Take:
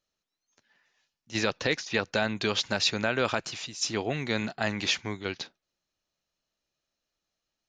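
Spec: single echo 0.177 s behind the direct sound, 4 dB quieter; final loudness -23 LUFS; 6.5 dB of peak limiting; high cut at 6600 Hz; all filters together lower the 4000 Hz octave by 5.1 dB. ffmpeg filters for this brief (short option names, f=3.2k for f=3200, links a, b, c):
-af "lowpass=6.6k,equalizer=f=4k:t=o:g=-5.5,alimiter=limit=-18dB:level=0:latency=1,aecho=1:1:177:0.631,volume=8.5dB"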